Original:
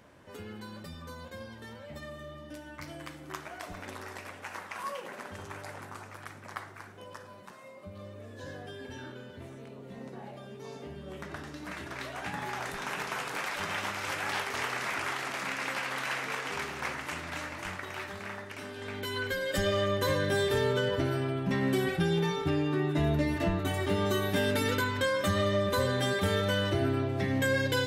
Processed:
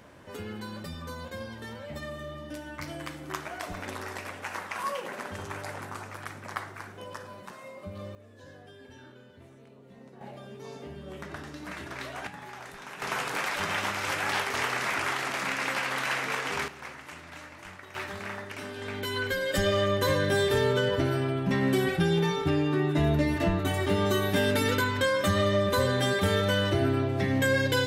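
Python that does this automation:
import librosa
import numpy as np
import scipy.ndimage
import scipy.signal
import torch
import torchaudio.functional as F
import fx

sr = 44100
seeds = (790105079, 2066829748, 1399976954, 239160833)

y = fx.gain(x, sr, db=fx.steps((0.0, 5.0), (8.15, -7.0), (10.21, 1.0), (12.27, -7.0), (13.02, 4.0), (16.68, -7.0), (17.95, 3.0)))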